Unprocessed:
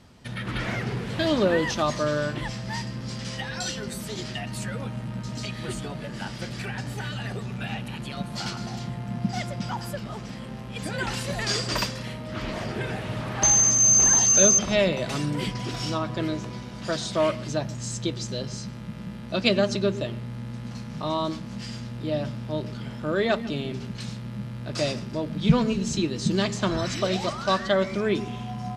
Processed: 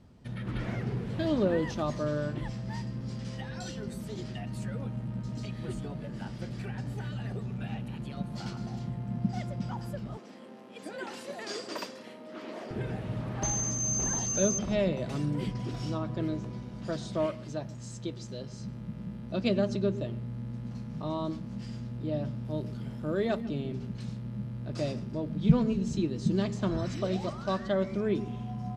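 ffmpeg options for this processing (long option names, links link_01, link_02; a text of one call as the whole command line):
ffmpeg -i in.wav -filter_complex "[0:a]asettb=1/sr,asplit=3[link_01][link_02][link_03];[link_01]atrim=end=10.174[link_04];[link_02]atrim=start=10.17:end=12.71,asetpts=PTS-STARTPTS,afade=type=in:duration=0.004:curve=qsin,afade=type=out:start_time=2.536:duration=0.004:curve=qsin,highpass=frequency=280:width=0.5412,highpass=frequency=280:width=1.3066[link_05];[link_03]atrim=start=12.706[link_06];[link_04][link_05]acrossfade=duration=0.004:curve1=hsin:curve2=qsin[link_07];[link_07][link_06]acrossfade=duration=0.004:curve1=qsin:curve2=hsin,asettb=1/sr,asplit=3[link_08][link_09][link_10];[link_08]atrim=end=17.264[link_11];[link_09]atrim=start=17.26:end=18.6,asetpts=PTS-STARTPTS,afade=type=in:duration=0.004:curve=qsin,afade=type=out:start_time=1.336:duration=0.004:curve=qsin,lowshelf=frequency=380:gain=-6.5[link_12];[link_10]atrim=start=18.596[link_13];[link_11][link_12]acrossfade=duration=0.004:curve1=hsin:curve2=qsin[link_14];[link_14][link_13]acrossfade=duration=0.004:curve1=qsin:curve2=hsin,asettb=1/sr,asplit=3[link_15][link_16][link_17];[link_15]atrim=end=22.454[link_18];[link_16]atrim=start=22.45:end=23.41,asetpts=PTS-STARTPTS,afade=type=in:duration=0.004:curve=qsin,afade=type=out:start_time=0.956:duration=0.004:curve=qsin,highshelf=frequency=8300:gain=11.5[link_19];[link_17]atrim=start=23.406[link_20];[link_18][link_19]acrossfade=duration=0.004:curve1=hsin:curve2=qsin[link_21];[link_21][link_20]acrossfade=duration=0.004:curve1=qsin:curve2=hsin,tiltshelf=frequency=770:gain=6,volume=-8dB" out.wav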